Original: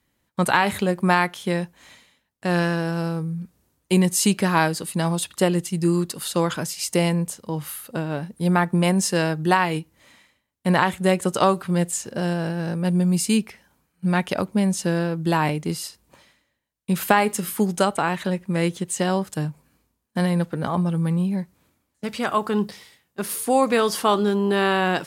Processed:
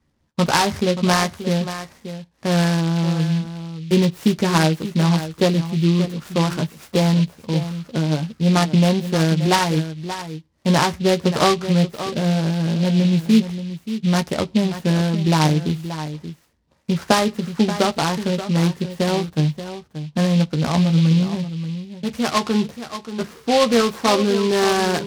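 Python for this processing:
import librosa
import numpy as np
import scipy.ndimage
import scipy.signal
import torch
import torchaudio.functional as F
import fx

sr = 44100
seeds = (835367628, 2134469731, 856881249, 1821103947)

y = scipy.signal.sosfilt(scipy.signal.butter(2, 2000.0, 'lowpass', fs=sr, output='sos'), x)
y = fx.low_shelf(y, sr, hz=260.0, db=6.5)
y = fx.doubler(y, sr, ms=13.0, db=-5.5)
y = y + 10.0 ** (-11.5 / 20.0) * np.pad(y, (int(580 * sr / 1000.0), 0))[:len(y)]
y = fx.noise_mod_delay(y, sr, seeds[0], noise_hz=3200.0, depth_ms=0.082)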